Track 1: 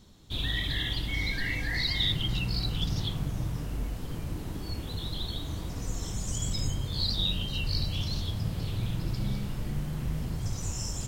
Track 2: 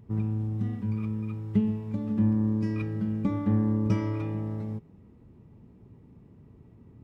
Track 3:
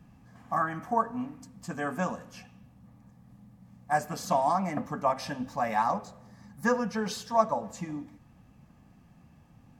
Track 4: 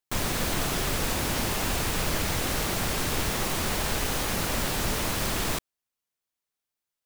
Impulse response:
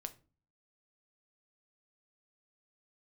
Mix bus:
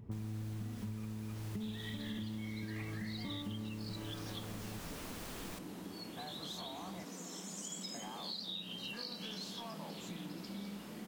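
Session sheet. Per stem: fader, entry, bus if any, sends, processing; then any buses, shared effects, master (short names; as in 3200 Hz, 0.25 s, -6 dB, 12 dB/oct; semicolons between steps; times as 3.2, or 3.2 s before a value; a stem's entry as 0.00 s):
-6.0 dB, 1.30 s, no send, steep high-pass 170 Hz 96 dB/oct
3.67 s -0.5 dB -> 4.19 s -10 dB, 0.00 s, no send, limiter -21.5 dBFS, peak gain reduction 8 dB
-10.5 dB, 2.30 s, muted 7.04–7.94, no send, spectral dilation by 60 ms; compressor, threshold -32 dBFS, peak gain reduction 16.5 dB; soft clip -32.5 dBFS, distortion -12 dB
-18.0 dB, 0.00 s, no send, dry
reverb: off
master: compressor 6:1, threshold -40 dBFS, peak gain reduction 14 dB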